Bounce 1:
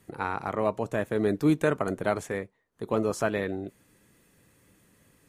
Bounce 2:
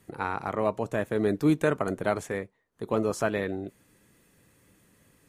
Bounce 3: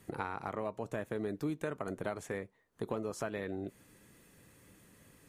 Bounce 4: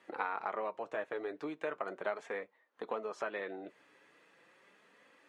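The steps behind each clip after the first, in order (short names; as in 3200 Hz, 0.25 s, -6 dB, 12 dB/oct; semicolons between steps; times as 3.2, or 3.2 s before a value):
nothing audible
compressor 6:1, threshold -35 dBFS, peak gain reduction 15.5 dB; gain +1 dB
flange 0.38 Hz, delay 3.3 ms, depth 4 ms, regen -37%; BPF 560–3100 Hz; gain +7.5 dB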